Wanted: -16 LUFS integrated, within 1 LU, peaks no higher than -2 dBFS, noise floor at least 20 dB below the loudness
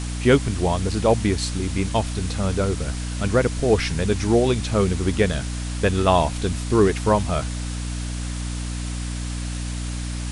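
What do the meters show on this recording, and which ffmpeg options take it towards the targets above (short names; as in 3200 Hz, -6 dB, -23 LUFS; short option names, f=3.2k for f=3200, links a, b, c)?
hum 60 Hz; harmonics up to 300 Hz; hum level -26 dBFS; noise floor -28 dBFS; noise floor target -43 dBFS; loudness -22.5 LUFS; peak -3.5 dBFS; loudness target -16.0 LUFS
-> -af "bandreject=f=60:t=h:w=6,bandreject=f=120:t=h:w=6,bandreject=f=180:t=h:w=6,bandreject=f=240:t=h:w=6,bandreject=f=300:t=h:w=6"
-af "afftdn=nr=15:nf=-28"
-af "volume=6.5dB,alimiter=limit=-2dB:level=0:latency=1"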